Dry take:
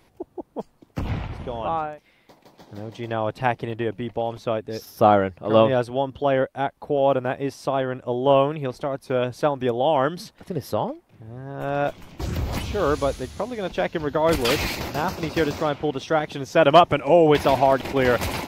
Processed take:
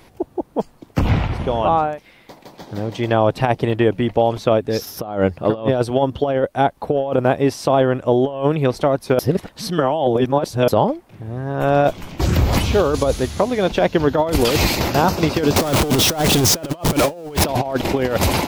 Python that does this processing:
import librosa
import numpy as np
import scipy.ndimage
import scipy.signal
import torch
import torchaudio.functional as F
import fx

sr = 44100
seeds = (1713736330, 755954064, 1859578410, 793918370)

y = fx.zero_step(x, sr, step_db=-19.0, at=(15.56, 17.44))
y = fx.edit(y, sr, fx.reverse_span(start_s=9.19, length_s=1.49), tone=tone)
y = fx.dynamic_eq(y, sr, hz=1900.0, q=0.89, threshold_db=-34.0, ratio=4.0, max_db=-6)
y = fx.over_compress(y, sr, threshold_db=-23.0, ratio=-0.5)
y = y * 10.0 ** (7.5 / 20.0)